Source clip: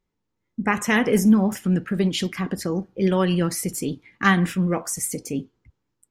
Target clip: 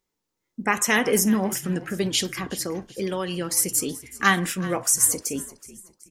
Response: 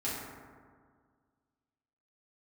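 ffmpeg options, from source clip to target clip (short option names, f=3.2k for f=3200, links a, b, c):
-filter_complex "[0:a]bass=f=250:g=-9,treble=f=4k:g=9,asettb=1/sr,asplit=3[a][b][c];[a]atrim=end=2.324[d];[b]atrim=start=2.32:end=3.57,asetpts=PTS-STARTPTS,afade=t=in:d=0.004:c=qsin,afade=t=out:st=1.246:d=0.004:c=qsin,acompressor=threshold=-25dB:ratio=3[e];[c]atrim=start=3.566[f];[d][e]acrossfade=d=0.004:c1=hsin:c2=qsin[g];[g][f]acrossfade=d=0.004:c1=qsin:c2=hsin,asplit=4[h][i][j][k];[i]adelay=375,afreqshift=-53,volume=-18dB[l];[j]adelay=750,afreqshift=-106,volume=-26.9dB[m];[k]adelay=1125,afreqshift=-159,volume=-35.7dB[n];[h][l][m][n]amix=inputs=4:normalize=0"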